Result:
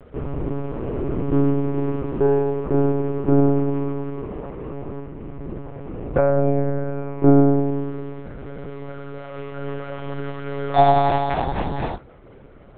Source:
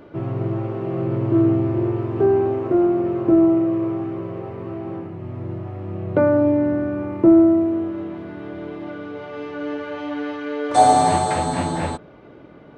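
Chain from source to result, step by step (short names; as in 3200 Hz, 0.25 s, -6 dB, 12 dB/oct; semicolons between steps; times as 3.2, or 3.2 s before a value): notches 50/100 Hz; monotone LPC vocoder at 8 kHz 140 Hz; gain -1 dB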